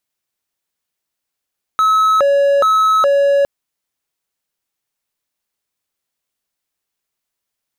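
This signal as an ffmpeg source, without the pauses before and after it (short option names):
-f lavfi -i "aevalsrc='0.422*(1-4*abs(mod((926*t+364/1.2*(0.5-abs(mod(1.2*t,1)-0.5)))+0.25,1)-0.5))':d=1.66:s=44100"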